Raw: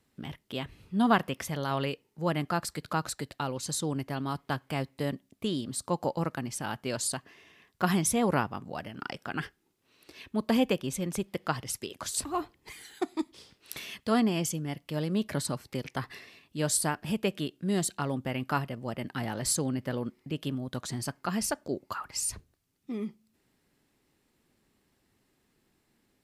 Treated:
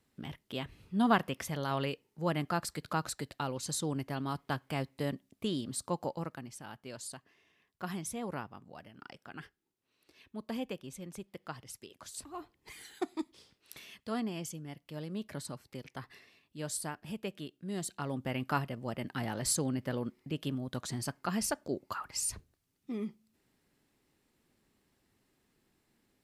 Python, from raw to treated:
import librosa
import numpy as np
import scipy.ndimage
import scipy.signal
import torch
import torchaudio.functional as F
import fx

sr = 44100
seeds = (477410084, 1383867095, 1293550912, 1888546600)

y = fx.gain(x, sr, db=fx.line((5.79, -3.0), (6.63, -12.5), (12.36, -12.5), (12.81, -2.0), (13.76, -10.0), (17.7, -10.0), (18.31, -2.5)))